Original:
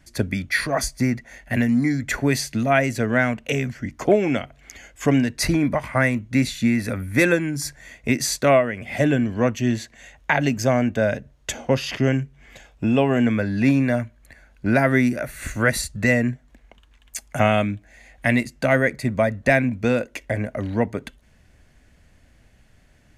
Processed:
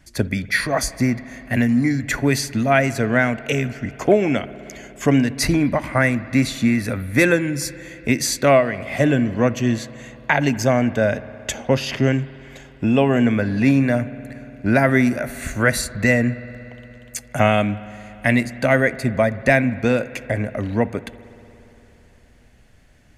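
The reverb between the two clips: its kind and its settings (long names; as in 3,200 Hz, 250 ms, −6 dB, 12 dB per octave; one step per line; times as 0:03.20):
spring reverb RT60 3.6 s, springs 58 ms, chirp 30 ms, DRR 16 dB
level +2 dB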